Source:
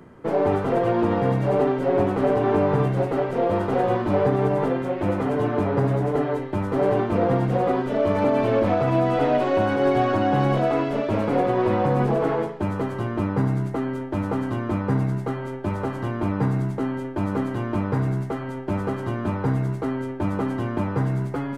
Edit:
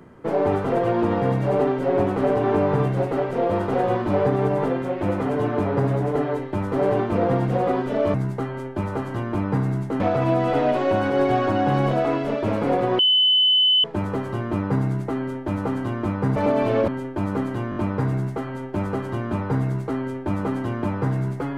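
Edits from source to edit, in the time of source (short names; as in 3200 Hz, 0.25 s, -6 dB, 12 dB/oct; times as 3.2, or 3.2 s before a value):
8.14–8.66 swap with 15.02–16.88
11.65–12.5 bleep 3020 Hz -14 dBFS
17.7 stutter 0.02 s, 4 plays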